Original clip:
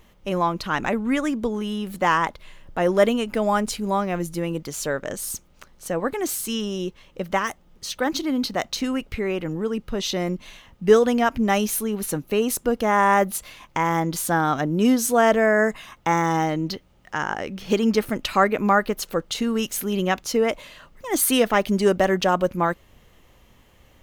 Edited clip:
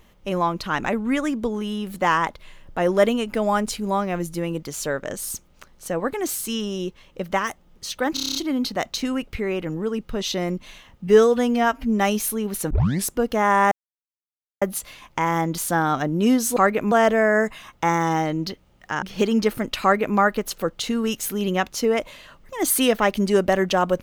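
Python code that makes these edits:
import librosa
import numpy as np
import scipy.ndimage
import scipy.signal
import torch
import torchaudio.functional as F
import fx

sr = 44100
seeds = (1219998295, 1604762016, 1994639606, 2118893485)

y = fx.edit(x, sr, fx.stutter(start_s=8.14, slice_s=0.03, count=8),
    fx.stretch_span(start_s=10.86, length_s=0.61, factor=1.5),
    fx.tape_start(start_s=12.19, length_s=0.37),
    fx.insert_silence(at_s=13.2, length_s=0.9),
    fx.cut(start_s=17.26, length_s=0.28),
    fx.duplicate(start_s=18.34, length_s=0.35, to_s=15.15), tone=tone)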